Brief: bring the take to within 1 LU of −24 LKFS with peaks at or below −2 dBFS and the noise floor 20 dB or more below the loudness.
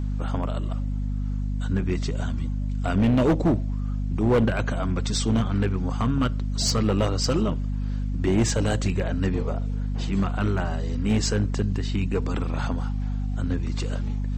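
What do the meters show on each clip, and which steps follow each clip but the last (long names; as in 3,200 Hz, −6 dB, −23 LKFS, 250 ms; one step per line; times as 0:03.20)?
share of clipped samples 1.7%; peaks flattened at −15.5 dBFS; mains hum 50 Hz; hum harmonics up to 250 Hz; level of the hum −24 dBFS; integrated loudness −25.5 LKFS; sample peak −15.5 dBFS; target loudness −24.0 LKFS
→ clipped peaks rebuilt −15.5 dBFS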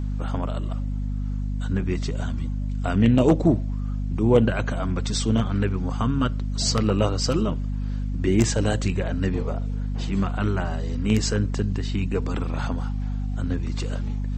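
share of clipped samples 0.0%; mains hum 50 Hz; hum harmonics up to 250 Hz; level of the hum −24 dBFS
→ hum removal 50 Hz, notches 5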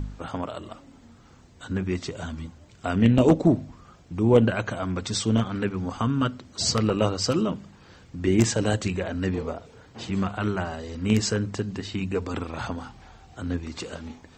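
mains hum none found; integrated loudness −25.5 LKFS; sample peak −5.0 dBFS; target loudness −24.0 LKFS
→ level +1.5 dB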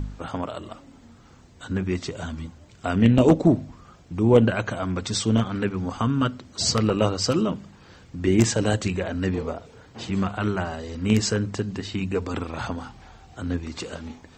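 integrated loudness −24.0 LKFS; sample peak −3.5 dBFS; background noise floor −51 dBFS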